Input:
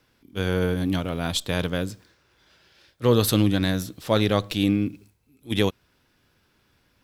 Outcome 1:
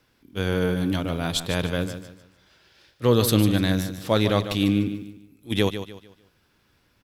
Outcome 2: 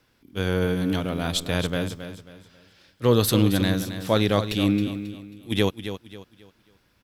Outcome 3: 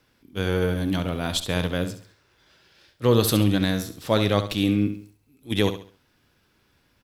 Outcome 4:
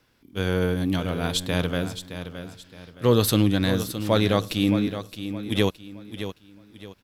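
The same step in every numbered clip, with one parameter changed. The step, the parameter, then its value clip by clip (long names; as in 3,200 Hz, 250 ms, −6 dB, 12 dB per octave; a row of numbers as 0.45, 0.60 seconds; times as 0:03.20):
repeating echo, delay time: 149, 270, 68, 618 milliseconds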